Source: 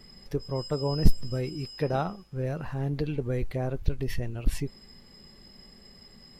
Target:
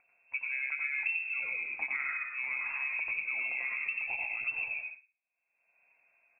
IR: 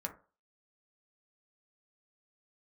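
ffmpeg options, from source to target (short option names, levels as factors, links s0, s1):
-filter_complex "[0:a]lowshelf=f=220:g=-6,bandreject=f=900:w=8.4,asplit=6[s0][s1][s2][s3][s4][s5];[s1]adelay=111,afreqshift=51,volume=0.316[s6];[s2]adelay=222,afreqshift=102,volume=0.143[s7];[s3]adelay=333,afreqshift=153,volume=0.0638[s8];[s4]adelay=444,afreqshift=204,volume=0.0288[s9];[s5]adelay=555,afreqshift=255,volume=0.013[s10];[s0][s6][s7][s8][s9][s10]amix=inputs=6:normalize=0,agate=range=0.00224:threshold=0.00794:ratio=16:detection=peak,acompressor=mode=upward:threshold=0.0158:ratio=2.5,asplit=2[s11][s12];[1:a]atrim=start_sample=2205,adelay=90[s13];[s12][s13]afir=irnorm=-1:irlink=0,volume=1[s14];[s11][s14]amix=inputs=2:normalize=0,lowpass=f=2300:t=q:w=0.5098,lowpass=f=2300:t=q:w=0.6013,lowpass=f=2300:t=q:w=0.9,lowpass=f=2300:t=q:w=2.563,afreqshift=-2700,acompressor=threshold=0.0355:ratio=6,volume=0.794"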